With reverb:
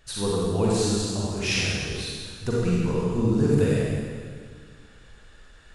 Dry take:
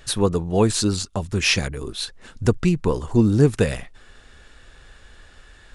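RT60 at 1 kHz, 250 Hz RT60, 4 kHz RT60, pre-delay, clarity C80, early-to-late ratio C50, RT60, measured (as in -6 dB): 1.8 s, 2.1 s, 1.7 s, 36 ms, -1.0 dB, -4.5 dB, 1.9 s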